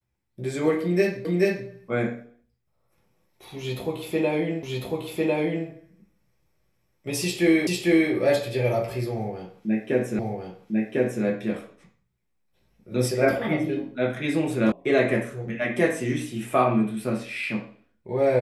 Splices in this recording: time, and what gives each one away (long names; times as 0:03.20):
0:01.25: the same again, the last 0.43 s
0:04.63: the same again, the last 1.05 s
0:07.67: the same again, the last 0.45 s
0:10.19: the same again, the last 1.05 s
0:14.72: cut off before it has died away